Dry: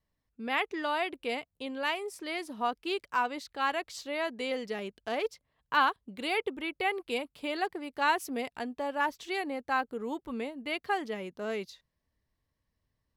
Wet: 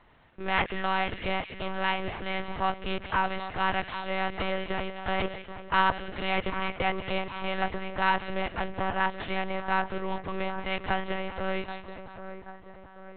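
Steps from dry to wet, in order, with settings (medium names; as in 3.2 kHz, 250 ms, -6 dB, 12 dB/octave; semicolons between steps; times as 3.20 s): spectral levelling over time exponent 0.6; on a send: two-band feedback delay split 1.8 kHz, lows 785 ms, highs 189 ms, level -10.5 dB; on the sum: monotone LPC vocoder at 8 kHz 190 Hz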